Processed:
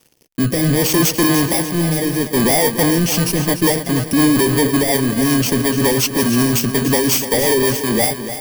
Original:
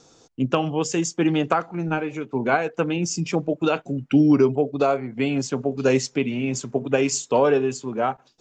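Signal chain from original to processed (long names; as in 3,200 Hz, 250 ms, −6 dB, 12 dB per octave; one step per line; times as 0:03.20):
samples in bit-reversed order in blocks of 32 samples
in parallel at +1 dB: brickwall limiter −15.5 dBFS, peak gain reduction 9.5 dB
on the sum: leveller curve on the samples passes 5
rotating-speaker cabinet horn 0.65 Hz, later 5.5 Hz, at 0:02.69
feedback echo at a low word length 293 ms, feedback 55%, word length 6 bits, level −10.5 dB
level −6.5 dB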